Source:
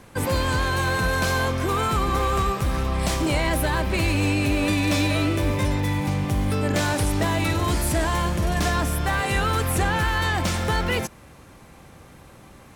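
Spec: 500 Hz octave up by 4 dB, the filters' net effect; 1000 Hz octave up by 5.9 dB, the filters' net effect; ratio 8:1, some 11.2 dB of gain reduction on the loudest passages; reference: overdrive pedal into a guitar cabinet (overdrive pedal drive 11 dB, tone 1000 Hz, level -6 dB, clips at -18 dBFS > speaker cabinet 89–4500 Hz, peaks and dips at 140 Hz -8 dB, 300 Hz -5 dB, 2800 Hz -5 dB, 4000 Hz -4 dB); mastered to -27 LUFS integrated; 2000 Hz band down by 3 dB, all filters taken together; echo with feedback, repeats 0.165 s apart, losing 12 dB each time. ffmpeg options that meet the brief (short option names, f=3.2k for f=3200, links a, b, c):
-filter_complex "[0:a]equalizer=f=500:t=o:g=3.5,equalizer=f=1k:t=o:g=8,equalizer=f=2k:t=o:g=-6.5,acompressor=threshold=-28dB:ratio=8,aecho=1:1:165|330|495:0.251|0.0628|0.0157,asplit=2[a][b];[b]highpass=f=720:p=1,volume=11dB,asoftclip=type=tanh:threshold=-18dB[c];[a][c]amix=inputs=2:normalize=0,lowpass=f=1k:p=1,volume=-6dB,highpass=89,equalizer=f=140:t=q:w=4:g=-8,equalizer=f=300:t=q:w=4:g=-5,equalizer=f=2.8k:t=q:w=4:g=-5,equalizer=f=4k:t=q:w=4:g=-4,lowpass=f=4.5k:w=0.5412,lowpass=f=4.5k:w=1.3066,volume=5.5dB"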